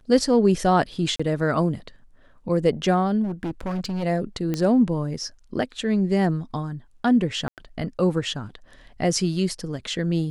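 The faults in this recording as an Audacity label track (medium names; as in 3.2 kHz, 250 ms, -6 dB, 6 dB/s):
1.160000	1.200000	dropout 35 ms
3.230000	4.040000	clipped -24 dBFS
4.540000	4.540000	pop -13 dBFS
7.480000	7.580000	dropout 98 ms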